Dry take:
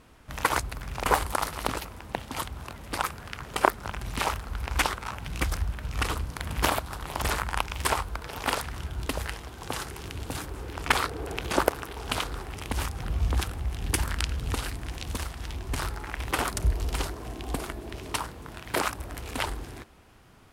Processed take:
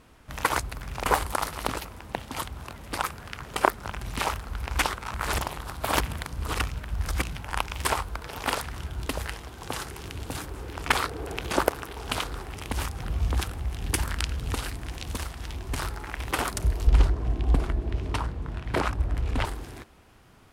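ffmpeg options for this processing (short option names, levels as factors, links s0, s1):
-filter_complex "[0:a]asettb=1/sr,asplit=3[s0][s1][s2];[s0]atrim=end=16.874[s3];[s1]atrim=start=16.87:end=19.45,asetpts=PTS-STARTPTS,afade=t=in:d=0.004:c=qsin,afade=t=out:st=2.576:d=0.004:c=qsin,aemphasis=mode=reproduction:type=bsi[s4];[s2]atrim=start=19.446[s5];[s3][s4]acrossfade=d=0.004:c1=hsin:c2=qsin[s6];[s6][s5]acrossfade=d=0.004:c1=qsin:c2=hsin,asplit=3[s7][s8][s9];[s7]atrim=end=5.142[s10];[s8]atrim=start=5.138:end=7.492,asetpts=PTS-STARTPTS,areverse[s11];[s9]atrim=start=7.488[s12];[s10][s11]acrossfade=d=0.004:c1=hsin:c2=hsin[s13];[s13][s12]acrossfade=d=0.004:c1=hsin:c2=hsin"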